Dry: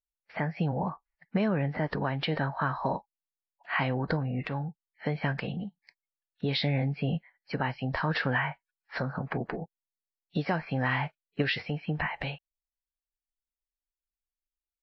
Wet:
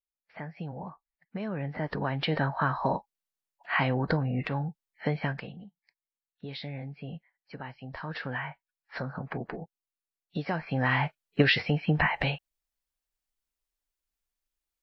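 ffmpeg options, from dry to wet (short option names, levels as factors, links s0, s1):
-af "volume=8.41,afade=t=in:st=1.37:d=1.03:silence=0.281838,afade=t=out:st=5.09:d=0.44:silence=0.237137,afade=t=in:st=7.85:d=1.14:silence=0.421697,afade=t=in:st=10.46:d=0.95:silence=0.354813"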